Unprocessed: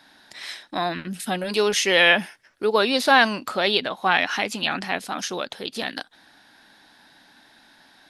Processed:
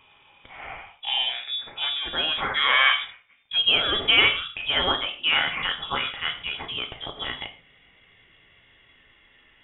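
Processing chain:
gliding playback speed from 69% → 99%
reverb whose tail is shaped and stops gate 160 ms falling, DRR 4 dB
voice inversion scrambler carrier 3,600 Hz
level −3.5 dB

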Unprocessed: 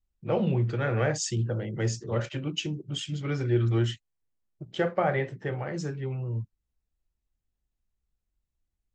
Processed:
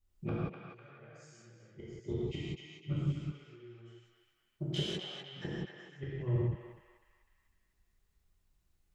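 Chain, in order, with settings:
healed spectral selection 0:01.78–0:02.74, 470–1,900 Hz
gate with flip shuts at −25 dBFS, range −37 dB
soft clipping −28.5 dBFS, distortion −17 dB
on a send: feedback echo with a band-pass in the loop 250 ms, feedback 57%, band-pass 2,000 Hz, level −4 dB
on the sum: reverb whose tail is shaped and stops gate 210 ms flat, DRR −7.5 dB

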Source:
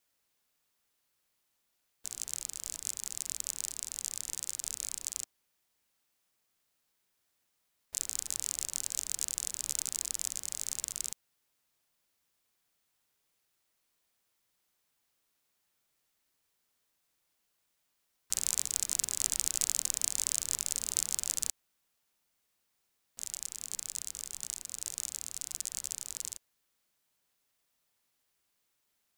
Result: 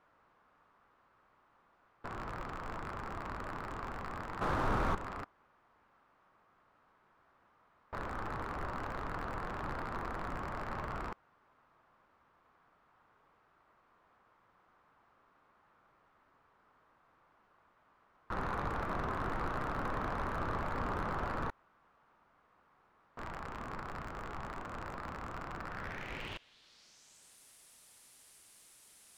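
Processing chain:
low-pass filter sweep 1,200 Hz → 9,900 Hz, 0:25.64–0:27.37
0:04.41–0:04.95: leveller curve on the samples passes 3
slew-rate limiting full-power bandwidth 5.6 Hz
level +16 dB

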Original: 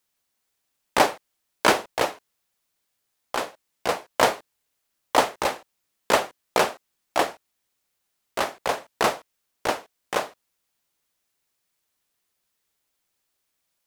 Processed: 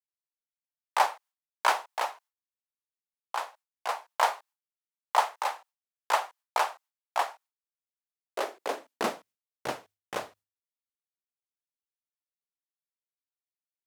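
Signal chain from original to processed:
downward expander −44 dBFS
high-pass filter sweep 880 Hz → 83 Hz, 0:07.68–0:10.07
mains-hum notches 50/100 Hz
level −9 dB

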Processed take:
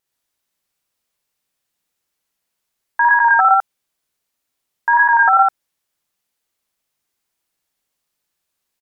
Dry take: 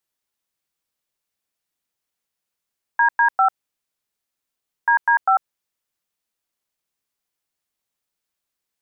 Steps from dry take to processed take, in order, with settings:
loudspeakers that aren't time-aligned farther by 19 metres −2 dB, 40 metres 0 dB
tape wow and flutter 26 cents
level +2 dB

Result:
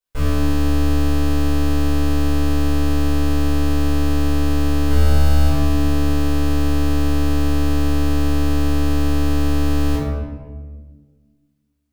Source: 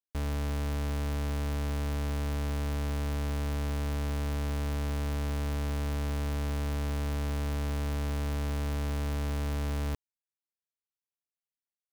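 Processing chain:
0:04.90–0:05.47: comb filter 1.4 ms, depth 88%
convolution reverb RT60 1.5 s, pre-delay 3 ms, DRR −12.5 dB
level −2.5 dB

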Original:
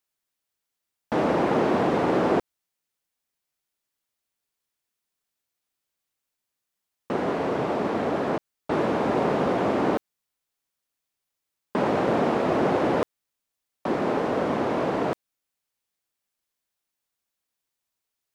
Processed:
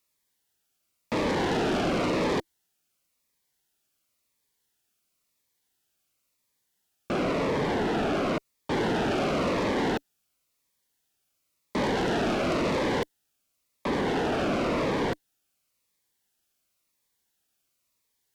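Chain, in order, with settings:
soft clipping −19 dBFS, distortion −15 dB
harmonic generator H 5 −11 dB, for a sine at −19 dBFS
phaser whose notches keep moving one way falling 0.95 Hz

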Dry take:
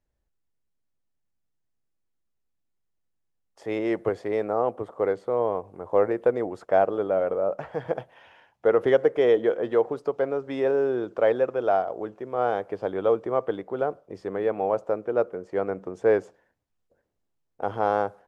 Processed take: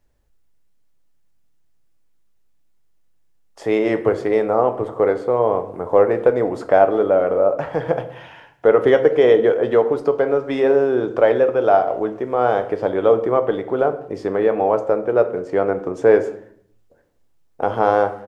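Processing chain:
in parallel at 0 dB: downward compressor, threshold −32 dBFS, peak gain reduction 17 dB
on the sum: far-end echo of a speakerphone 190 ms, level −27 dB
convolution reverb RT60 0.60 s, pre-delay 7 ms, DRR 8 dB
level +5 dB

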